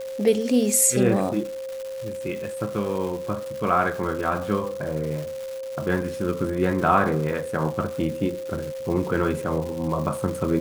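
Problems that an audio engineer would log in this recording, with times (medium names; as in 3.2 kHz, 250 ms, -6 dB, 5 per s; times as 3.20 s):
crackle 470 per s -32 dBFS
whine 530 Hz -30 dBFS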